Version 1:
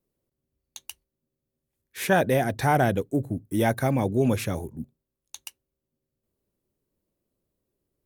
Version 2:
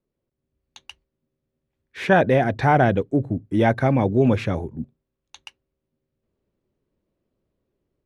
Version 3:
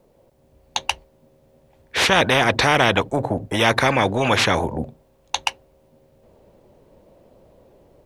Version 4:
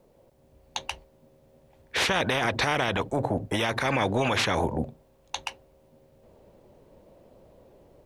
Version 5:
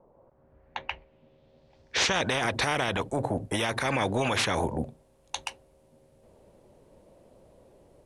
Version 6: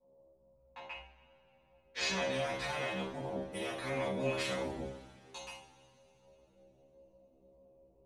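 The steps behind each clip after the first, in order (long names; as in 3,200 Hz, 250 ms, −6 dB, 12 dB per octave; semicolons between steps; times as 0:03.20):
low-pass filter 3,100 Hz 12 dB per octave; automatic gain control gain up to 5 dB
flat-topped bell 680 Hz +10 dB 1.2 octaves; every bin compressed towards the loudest bin 4 to 1; level −3.5 dB
brickwall limiter −12.5 dBFS, peak gain reduction 10.5 dB; level −2.5 dB
low-pass filter sweep 1,000 Hz → 10,000 Hz, 0:00.10–0:02.51; level −2 dB
adaptive Wiener filter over 25 samples; stiff-string resonator 64 Hz, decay 0.58 s, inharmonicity 0.002; coupled-rooms reverb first 0.45 s, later 3.4 s, from −22 dB, DRR −9.5 dB; level −8 dB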